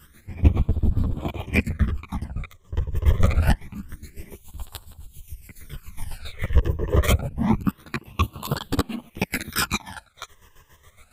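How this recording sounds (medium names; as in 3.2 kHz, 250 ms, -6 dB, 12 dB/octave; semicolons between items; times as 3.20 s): phasing stages 12, 0.26 Hz, lowest notch 230–2100 Hz; chopped level 7.2 Hz, depth 65%, duty 40%; a shimmering, thickened sound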